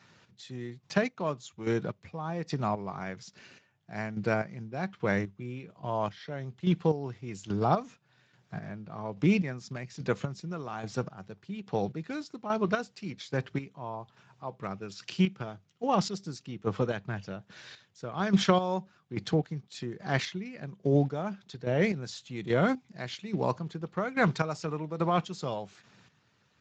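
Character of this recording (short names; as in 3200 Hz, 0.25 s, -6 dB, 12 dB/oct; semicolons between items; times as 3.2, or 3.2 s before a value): chopped level 1.2 Hz, depth 65%, duty 30%; Speex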